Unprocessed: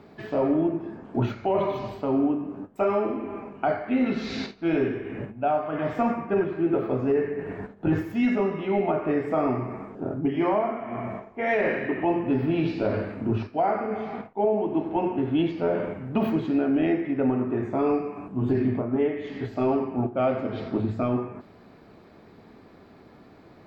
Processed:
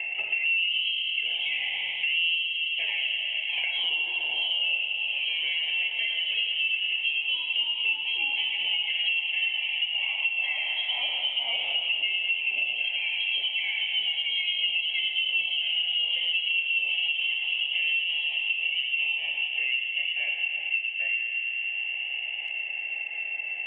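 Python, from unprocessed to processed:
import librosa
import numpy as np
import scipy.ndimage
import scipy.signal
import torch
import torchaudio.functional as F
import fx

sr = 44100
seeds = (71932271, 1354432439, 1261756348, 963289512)

p1 = fx.notch(x, sr, hz=1900.0, q=5.8)
p2 = 10.0 ** (-28.5 / 20.0) * np.tanh(p1 / 10.0 ** (-28.5 / 20.0))
p3 = p1 + (p2 * librosa.db_to_amplitude(-7.5))
p4 = fx.vowel_filter(p3, sr, vowel='u')
p5 = fx.freq_invert(p4, sr, carrier_hz=3000)
p6 = fx.echo_pitch(p5, sr, ms=146, semitones=1, count=3, db_per_echo=-3.0)
p7 = fx.echo_wet_highpass(p6, sr, ms=109, feedback_pct=79, hz=1600.0, wet_db=-9)
y = fx.band_squash(p7, sr, depth_pct=100)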